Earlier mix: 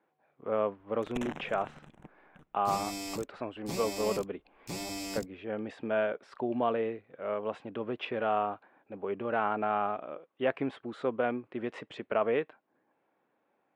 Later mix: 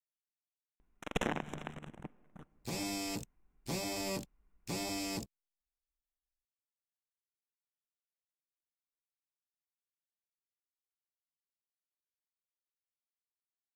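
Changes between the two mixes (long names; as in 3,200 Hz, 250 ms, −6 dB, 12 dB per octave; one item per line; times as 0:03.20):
speech: muted
first sound +5.5 dB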